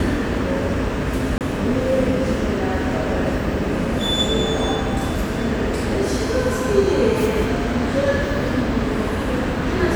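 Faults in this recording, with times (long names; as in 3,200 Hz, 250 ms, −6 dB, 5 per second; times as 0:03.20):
0:01.38–0:01.41: drop-out 28 ms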